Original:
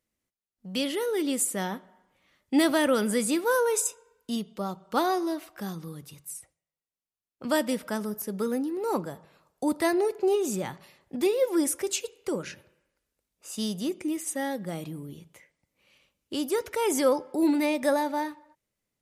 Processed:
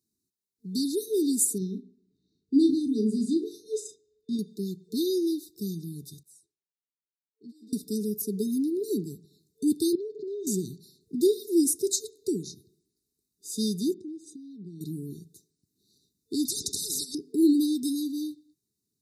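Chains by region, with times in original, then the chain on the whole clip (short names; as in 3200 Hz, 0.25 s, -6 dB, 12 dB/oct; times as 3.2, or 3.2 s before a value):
1.58–4.39 tape spacing loss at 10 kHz 22 dB + notches 50/100/150/200/250/300/350/400/450 Hz + doubler 37 ms -8 dB
6.23–7.73 negative-ratio compressor -33 dBFS + band-pass 1100 Hz, Q 1.3 + ensemble effect
9.95–10.47 comb 6.9 ms, depth 63% + compressor 16:1, threshold -34 dBFS + air absorption 170 m
13.94–14.81 LPF 2800 Hz + compressor 3:1, threshold -43 dBFS
16.45–17.15 LPF 8600 Hz 24 dB/oct + negative-ratio compressor -25 dBFS, ratio -0.5 + spectral compressor 10:1
whole clip: HPF 97 Hz; FFT band-reject 450–3600 Hz; gain +3 dB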